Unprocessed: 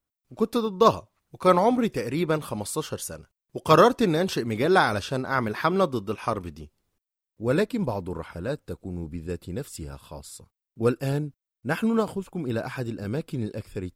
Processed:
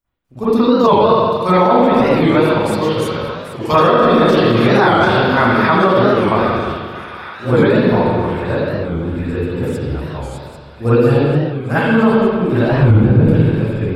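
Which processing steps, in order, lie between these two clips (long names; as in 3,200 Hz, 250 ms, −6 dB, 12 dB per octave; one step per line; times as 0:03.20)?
0:12.68–0:13.24: RIAA equalisation playback
delay with a high-pass on its return 794 ms, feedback 59%, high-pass 1,600 Hz, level −11 dB
convolution reverb RT60 1.8 s, pre-delay 42 ms, DRR −16 dB
dynamic equaliser 4,400 Hz, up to +5 dB, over −41 dBFS, Q 3.5
boost into a limiter 0 dB
wow of a warped record 45 rpm, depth 160 cents
level −1.5 dB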